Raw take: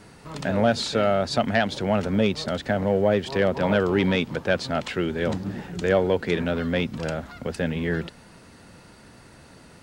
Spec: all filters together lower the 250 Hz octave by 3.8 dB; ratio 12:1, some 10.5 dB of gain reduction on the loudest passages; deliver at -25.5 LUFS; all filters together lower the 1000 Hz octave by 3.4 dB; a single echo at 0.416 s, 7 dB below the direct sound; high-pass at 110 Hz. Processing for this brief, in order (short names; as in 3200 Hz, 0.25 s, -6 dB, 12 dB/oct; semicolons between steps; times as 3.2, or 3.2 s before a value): HPF 110 Hz; bell 250 Hz -4.5 dB; bell 1000 Hz -5 dB; compressor 12:1, threshold -29 dBFS; echo 0.416 s -7 dB; gain +8 dB